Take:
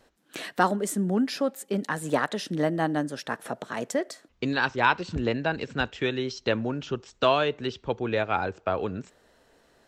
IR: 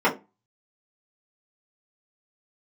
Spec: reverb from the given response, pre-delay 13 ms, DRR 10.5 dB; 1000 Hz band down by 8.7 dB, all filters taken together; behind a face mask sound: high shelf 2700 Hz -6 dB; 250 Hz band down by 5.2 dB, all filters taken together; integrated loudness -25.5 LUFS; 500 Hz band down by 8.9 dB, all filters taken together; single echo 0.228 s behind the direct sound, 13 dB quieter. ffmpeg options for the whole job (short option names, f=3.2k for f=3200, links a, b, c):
-filter_complex "[0:a]equalizer=f=250:t=o:g=-4,equalizer=f=500:t=o:g=-8,equalizer=f=1k:t=o:g=-7.5,aecho=1:1:228:0.224,asplit=2[a][b];[1:a]atrim=start_sample=2205,adelay=13[c];[b][c]afir=irnorm=-1:irlink=0,volume=-29dB[d];[a][d]amix=inputs=2:normalize=0,highshelf=f=2.7k:g=-6,volume=8dB"